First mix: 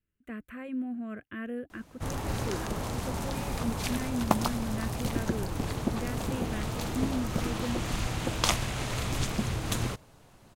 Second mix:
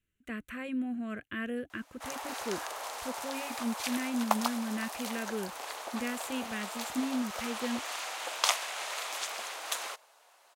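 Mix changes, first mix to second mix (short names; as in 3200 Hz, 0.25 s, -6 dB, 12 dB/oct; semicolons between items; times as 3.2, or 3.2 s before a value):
speech: add bell 5600 Hz +12.5 dB 2.5 oct; background: add HPF 620 Hz 24 dB/oct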